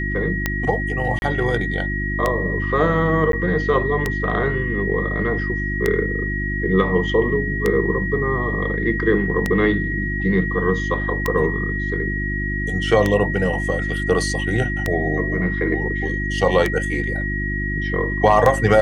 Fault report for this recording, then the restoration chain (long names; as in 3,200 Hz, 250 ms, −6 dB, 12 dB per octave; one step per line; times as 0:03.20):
mains hum 50 Hz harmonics 7 −25 dBFS
scratch tick 33 1/3 rpm −5 dBFS
whistle 1,900 Hz −25 dBFS
0:01.19–0:01.22: drop-out 31 ms
0:03.32–0:03.33: drop-out 12 ms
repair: click removal
hum removal 50 Hz, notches 7
notch filter 1,900 Hz, Q 30
repair the gap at 0:01.19, 31 ms
repair the gap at 0:03.32, 12 ms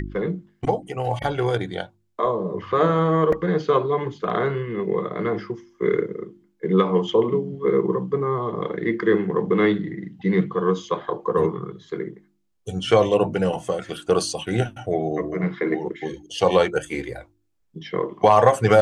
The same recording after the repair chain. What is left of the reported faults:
none of them is left